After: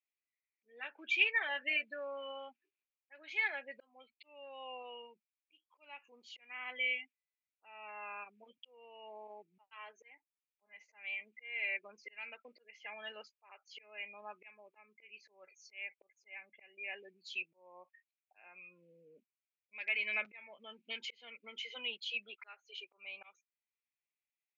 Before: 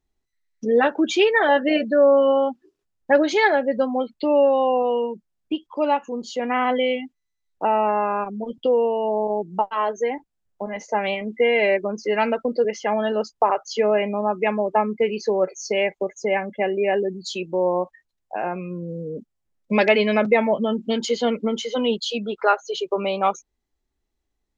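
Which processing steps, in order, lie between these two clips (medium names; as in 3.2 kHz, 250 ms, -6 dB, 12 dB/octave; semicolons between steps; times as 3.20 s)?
slow attack 497 ms; band-pass filter 2.4 kHz, Q 6.7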